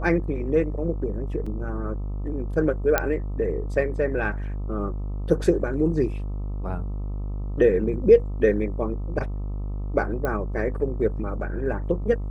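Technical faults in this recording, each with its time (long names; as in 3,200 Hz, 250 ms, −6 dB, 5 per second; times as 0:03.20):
mains buzz 50 Hz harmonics 26 −29 dBFS
0:01.46: drop-out 4.5 ms
0:02.98: click −5 dBFS
0:10.25: click −15 dBFS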